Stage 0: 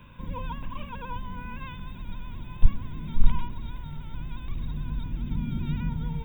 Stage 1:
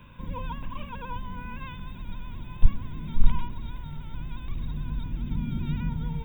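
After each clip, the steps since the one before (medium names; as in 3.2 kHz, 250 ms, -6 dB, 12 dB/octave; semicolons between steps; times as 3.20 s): no audible change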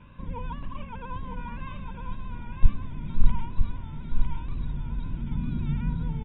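wow and flutter 69 cents; distance through air 270 m; delay 954 ms -5 dB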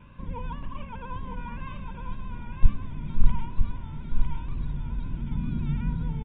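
reverberation RT60 2.2 s, pre-delay 3 ms, DRR 16 dB; resampled via 8 kHz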